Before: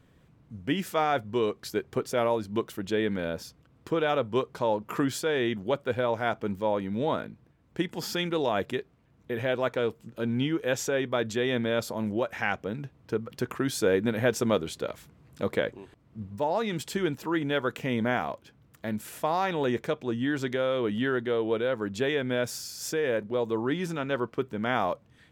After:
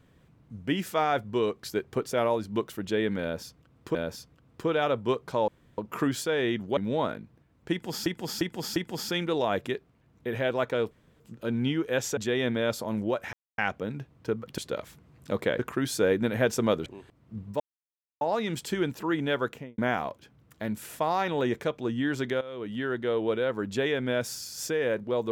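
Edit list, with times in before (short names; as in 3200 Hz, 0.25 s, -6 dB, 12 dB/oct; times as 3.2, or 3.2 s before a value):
3.22–3.95 loop, 2 plays
4.75 insert room tone 0.30 s
5.74–6.86 cut
7.8–8.15 loop, 4 plays
9.95 insert room tone 0.29 s
10.92–11.26 cut
12.42 insert silence 0.25 s
14.69–15.7 move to 13.42
16.44 insert silence 0.61 s
17.65–18.01 studio fade out
20.64–21.36 fade in, from -16.5 dB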